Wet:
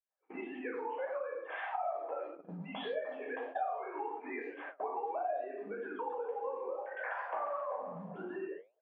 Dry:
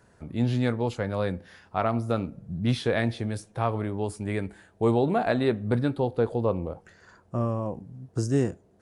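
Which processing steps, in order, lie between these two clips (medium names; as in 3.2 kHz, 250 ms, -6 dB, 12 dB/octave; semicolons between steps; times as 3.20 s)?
formants replaced by sine waves; recorder AGC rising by 72 dB/s; tilt EQ +4.5 dB/octave; speakerphone echo 100 ms, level -12 dB; simulated room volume 690 m³, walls furnished, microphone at 5.4 m; gate -26 dBFS, range -34 dB; band-pass filter 750 Hz, Q 3.4; compression 3:1, threshold -35 dBFS, peak gain reduction 15.5 dB; flange 1.7 Hz, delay 5.6 ms, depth 7.3 ms, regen +80%; 5.96–8.47 s: modulated delay 133 ms, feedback 50%, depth 158 cents, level -11 dB; trim +1.5 dB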